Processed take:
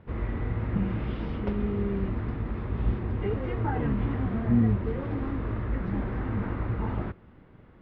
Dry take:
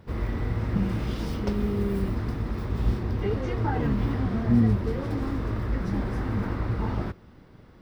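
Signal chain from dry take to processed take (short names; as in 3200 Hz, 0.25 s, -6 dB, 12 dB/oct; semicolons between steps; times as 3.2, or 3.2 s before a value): LPF 3000 Hz 24 dB/oct; gain -2 dB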